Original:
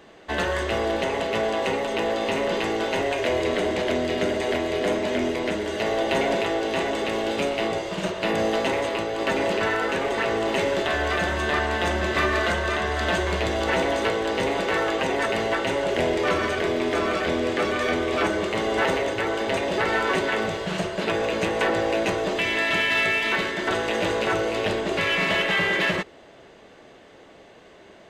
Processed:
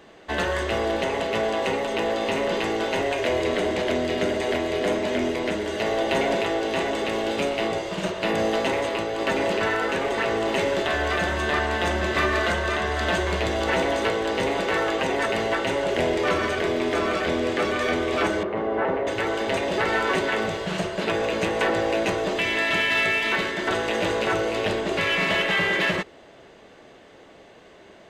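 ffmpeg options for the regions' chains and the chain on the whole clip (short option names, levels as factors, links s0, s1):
-filter_complex "[0:a]asettb=1/sr,asplit=3[s0][s1][s2];[s0]atrim=end=18.434[s3];[s1]atrim=start=18.43:end=19.07,asetpts=PTS-STARTPTS,afade=t=in:d=0.004:c=qsin,afade=t=out:st=0.636:d=0.004:c=qsin,lowpass=1300,lowshelf=f=85:g=-9[s4];[s2]atrim=start=19.066[s5];[s3][s4]acrossfade=d=0.004:c1=hsin:c2=qsin[s6];[s6][s5]acrossfade=d=0.004:c1=qsin:c2=hsin"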